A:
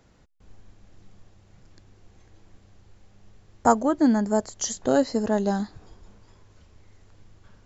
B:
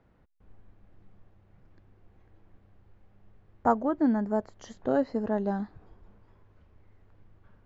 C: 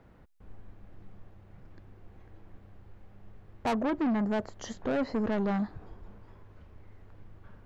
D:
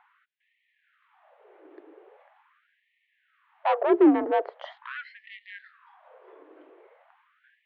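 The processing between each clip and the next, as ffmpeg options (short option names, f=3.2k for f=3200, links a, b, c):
-af "lowpass=2k,volume=-5dB"
-filter_complex "[0:a]asplit=2[a][b];[b]alimiter=limit=-22dB:level=0:latency=1:release=21,volume=-1.5dB[c];[a][c]amix=inputs=2:normalize=0,asoftclip=type=tanh:threshold=-26.5dB,volume=1.5dB"
-af "highpass=f=160:t=q:w=0.5412,highpass=f=160:t=q:w=1.307,lowpass=f=3.4k:t=q:w=0.5176,lowpass=f=3.4k:t=q:w=0.7071,lowpass=f=3.4k:t=q:w=1.932,afreqshift=54,equalizer=f=290:w=0.51:g=10.5,afftfilt=real='re*gte(b*sr/1024,280*pow(1800/280,0.5+0.5*sin(2*PI*0.42*pts/sr)))':imag='im*gte(b*sr/1024,280*pow(1800/280,0.5+0.5*sin(2*PI*0.42*pts/sr)))':win_size=1024:overlap=0.75,volume=2.5dB"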